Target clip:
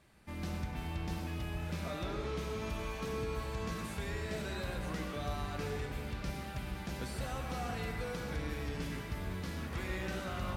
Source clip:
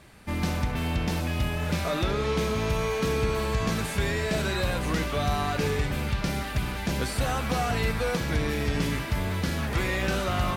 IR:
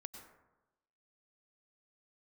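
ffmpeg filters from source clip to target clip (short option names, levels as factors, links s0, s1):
-filter_complex "[0:a]asettb=1/sr,asplit=3[s0][s1][s2];[s0]atrim=end=2.614[s3];[s1]atrim=start=2.61:end=3.01,asetpts=PTS-STARTPTS,afade=t=in:d=0.004:c=qsin,afade=t=out:st=0.396:d=0.004:c=qsin,aecho=1:1:3.4:0.5,atrim=end_sample=17640[s4];[s2]atrim=start=3.006[s5];[s3][s4]acrossfade=d=0.004:c1=hsin:c2=qsin[s6];[s6][s5]acrossfade=d=0.004:c1=qsin:c2=hsin[s7];[1:a]atrim=start_sample=2205[s8];[s7][s8]afir=irnorm=-1:irlink=0,volume=0.422"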